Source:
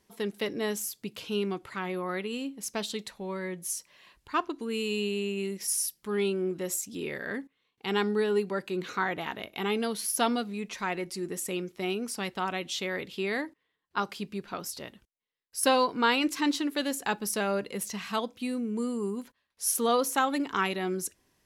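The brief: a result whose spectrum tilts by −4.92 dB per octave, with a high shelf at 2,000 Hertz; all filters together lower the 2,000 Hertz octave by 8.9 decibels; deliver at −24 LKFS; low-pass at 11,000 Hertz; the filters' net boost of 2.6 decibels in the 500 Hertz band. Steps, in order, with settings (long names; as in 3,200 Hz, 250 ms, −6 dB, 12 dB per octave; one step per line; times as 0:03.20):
low-pass filter 11,000 Hz
parametric band 500 Hz +4 dB
high-shelf EQ 2,000 Hz −7 dB
parametric band 2,000 Hz −8 dB
level +7 dB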